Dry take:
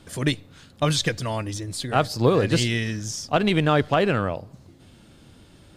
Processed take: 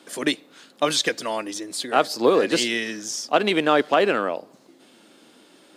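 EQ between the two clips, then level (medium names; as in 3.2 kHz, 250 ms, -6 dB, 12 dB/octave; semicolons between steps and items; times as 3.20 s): high-pass 260 Hz 24 dB/octave; +2.5 dB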